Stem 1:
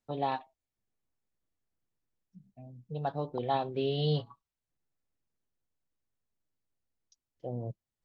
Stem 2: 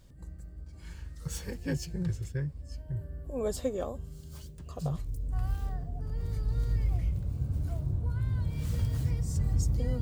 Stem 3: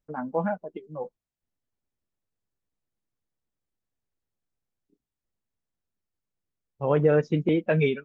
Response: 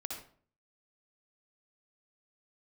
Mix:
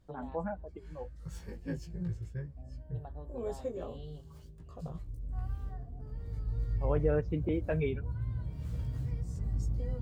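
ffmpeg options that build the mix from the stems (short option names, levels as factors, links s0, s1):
-filter_complex "[0:a]acompressor=threshold=0.0112:ratio=10,volume=0.501,asplit=2[s0][s1];[s1]volume=0.0668[s2];[1:a]flanger=delay=16:depth=2.2:speed=0.35,volume=0.708[s3];[2:a]volume=0.355,asplit=2[s4][s5];[s5]apad=whole_len=354805[s6];[s0][s6]sidechaincompress=threshold=0.0141:ratio=8:attack=16:release=799[s7];[s2]aecho=0:1:267:1[s8];[s7][s3][s4][s8]amix=inputs=4:normalize=0,highshelf=f=2900:g=-10.5"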